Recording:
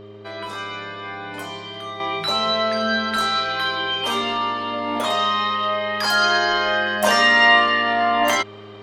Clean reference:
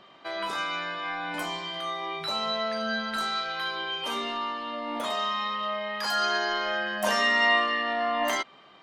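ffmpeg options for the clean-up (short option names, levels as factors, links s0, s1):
-af "bandreject=f=104.8:t=h:w=4,bandreject=f=209.6:t=h:w=4,bandreject=f=314.4:t=h:w=4,bandreject=f=419.2:t=h:w=4,bandreject=f=524:t=h:w=4,bandreject=f=628.8:t=h:w=4,bandreject=f=400:w=30,asetnsamples=n=441:p=0,asendcmd='2 volume volume -8.5dB',volume=1"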